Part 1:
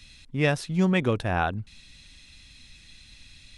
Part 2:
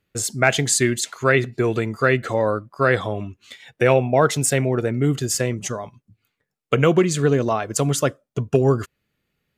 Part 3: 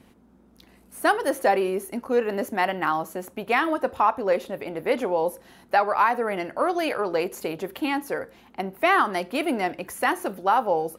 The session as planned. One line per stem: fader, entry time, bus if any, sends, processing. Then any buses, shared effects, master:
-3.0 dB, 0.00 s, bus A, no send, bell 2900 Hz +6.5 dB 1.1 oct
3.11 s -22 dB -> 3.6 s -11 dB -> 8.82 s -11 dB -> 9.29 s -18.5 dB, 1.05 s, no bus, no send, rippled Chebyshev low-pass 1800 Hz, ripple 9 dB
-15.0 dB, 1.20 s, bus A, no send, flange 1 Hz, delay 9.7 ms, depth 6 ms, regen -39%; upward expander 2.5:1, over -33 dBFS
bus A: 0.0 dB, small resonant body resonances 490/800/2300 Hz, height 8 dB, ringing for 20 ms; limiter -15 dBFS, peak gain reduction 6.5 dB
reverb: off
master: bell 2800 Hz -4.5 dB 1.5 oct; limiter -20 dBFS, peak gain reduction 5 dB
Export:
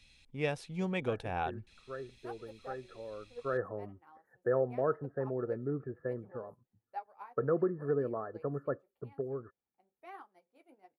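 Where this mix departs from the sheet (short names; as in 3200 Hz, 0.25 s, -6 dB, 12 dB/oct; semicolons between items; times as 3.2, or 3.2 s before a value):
stem 1 -3.0 dB -> -13.5 dB; stem 2: entry 1.05 s -> 0.65 s; stem 3 -15.0 dB -> -23.0 dB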